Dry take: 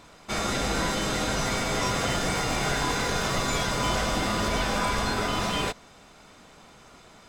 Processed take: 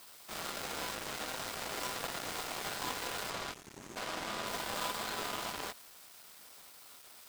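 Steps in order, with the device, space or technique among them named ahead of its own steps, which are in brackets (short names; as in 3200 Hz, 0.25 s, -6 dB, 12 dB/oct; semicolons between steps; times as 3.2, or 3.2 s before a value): weighting filter A; 3.54–3.96 spectral gain 410–6300 Hz -24 dB; budget class-D amplifier (switching dead time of 0.23 ms; switching spikes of -32.5 dBFS); 3.3–4.47 high shelf 10000 Hz -10.5 dB; gain -6 dB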